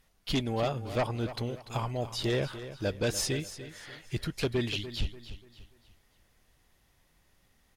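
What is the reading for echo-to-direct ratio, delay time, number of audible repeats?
−12.5 dB, 292 ms, 3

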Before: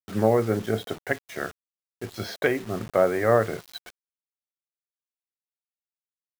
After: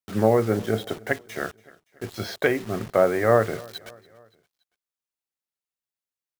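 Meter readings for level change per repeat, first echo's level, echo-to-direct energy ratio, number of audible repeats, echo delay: −5.5 dB, −23.5 dB, −22.0 dB, 3, 285 ms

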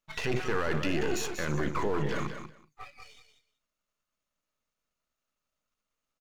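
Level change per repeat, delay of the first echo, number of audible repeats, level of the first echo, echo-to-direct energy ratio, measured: −16.0 dB, 189 ms, 2, −8.5 dB, −8.5 dB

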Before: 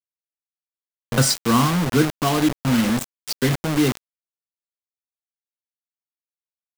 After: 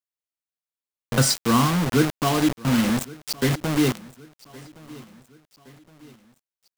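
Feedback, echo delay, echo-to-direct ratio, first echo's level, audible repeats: 47%, 1,117 ms, −20.5 dB, −21.5 dB, 3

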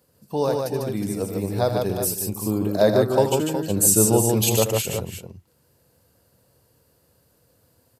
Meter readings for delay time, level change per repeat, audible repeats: 79 ms, repeats not evenly spaced, 4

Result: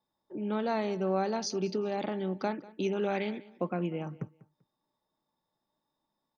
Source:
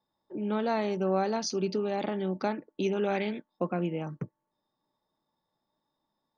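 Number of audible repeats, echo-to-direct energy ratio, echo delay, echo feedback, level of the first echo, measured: 2, −20.5 dB, 195 ms, 24%, −20.5 dB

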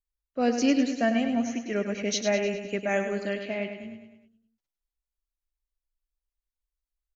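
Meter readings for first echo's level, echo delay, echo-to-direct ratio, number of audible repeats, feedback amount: −8.0 dB, 102 ms, −6.5 dB, 5, 53%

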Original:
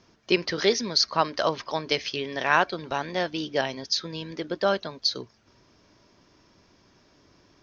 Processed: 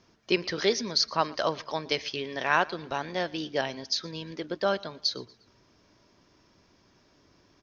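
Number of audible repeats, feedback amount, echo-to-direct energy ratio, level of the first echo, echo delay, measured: 2, 43%, −22.0 dB, −23.0 dB, 118 ms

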